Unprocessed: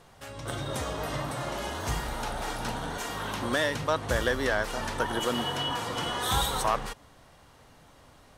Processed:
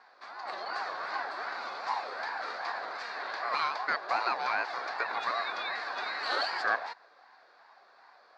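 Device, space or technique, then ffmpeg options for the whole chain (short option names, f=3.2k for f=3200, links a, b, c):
voice changer toy: -filter_complex "[0:a]aeval=exprs='val(0)*sin(2*PI*700*n/s+700*0.35/2.6*sin(2*PI*2.6*n/s))':c=same,highpass=590,equalizer=f=740:t=q:w=4:g=7,equalizer=f=1.1k:t=q:w=4:g=6,equalizer=f=1.6k:t=q:w=4:g=7,equalizer=f=3k:t=q:w=4:g=-9,equalizer=f=4.5k:t=q:w=4:g=10,lowpass=f=4.6k:w=0.5412,lowpass=f=4.6k:w=1.3066,asettb=1/sr,asplit=3[a][b][c];[a]atrim=end=1.524[d];[b]atrim=start=1.52:end=2.12,asetpts=PTS-STARTPTS,afade=t=in:d=0.004:c=qsin,afade=t=out:st=0.596:d=0.004:c=qsin,equalizer=f=1.7k:t=o:w=0.21:g=-7[e];[c]atrim=start=2.116[f];[d][e]acrossfade=d=0.004:c1=hsin:c2=qsin[g];[g][f]acrossfade=d=0.004:c1=qsin:c2=hsin,volume=-3dB"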